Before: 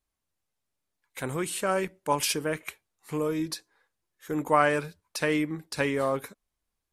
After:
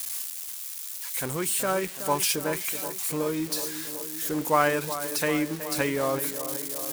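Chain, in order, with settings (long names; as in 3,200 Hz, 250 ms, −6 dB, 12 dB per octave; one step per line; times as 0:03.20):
spike at every zero crossing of −24.5 dBFS
on a send: tape delay 373 ms, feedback 82%, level −10 dB, low-pass 1,700 Hz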